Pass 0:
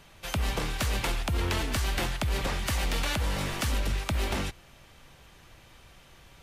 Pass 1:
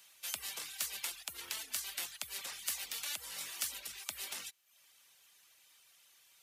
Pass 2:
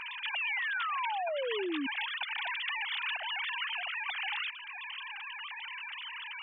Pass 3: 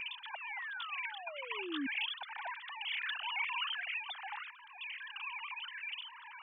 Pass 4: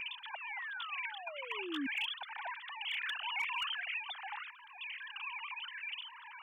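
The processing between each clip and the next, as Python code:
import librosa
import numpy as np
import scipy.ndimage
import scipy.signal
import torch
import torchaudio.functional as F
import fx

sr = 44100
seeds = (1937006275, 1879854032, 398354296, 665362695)

y1 = fx.dereverb_blind(x, sr, rt60_s=0.63)
y1 = fx.rider(y1, sr, range_db=10, speed_s=0.5)
y1 = np.diff(y1, prepend=0.0)
y2 = fx.sine_speech(y1, sr)
y2 = fx.spec_paint(y2, sr, seeds[0], shape='fall', start_s=0.35, length_s=1.52, low_hz=260.0, high_hz=2900.0, level_db=-36.0)
y2 = fx.env_flatten(y2, sr, amount_pct=70)
y3 = fx.phaser_stages(y2, sr, stages=8, low_hz=470.0, high_hz=3100.0, hz=0.51, feedback_pct=45)
y4 = np.clip(y3, -10.0 ** (-30.0 / 20.0), 10.0 ** (-30.0 / 20.0))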